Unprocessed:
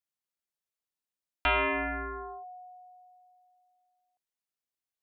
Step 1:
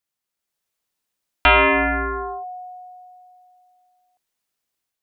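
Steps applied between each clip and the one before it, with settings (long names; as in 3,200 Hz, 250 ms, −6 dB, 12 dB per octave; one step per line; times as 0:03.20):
automatic gain control gain up to 5.5 dB
level +7 dB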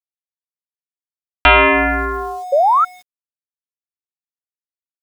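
centre clipping without the shift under −41 dBFS
sound drawn into the spectrogram rise, 0:02.52–0:02.85, 530–1,400 Hz −16 dBFS
level +4 dB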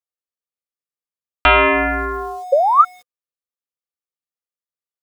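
hollow resonant body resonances 500/1,200 Hz, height 11 dB, ringing for 45 ms
level −3 dB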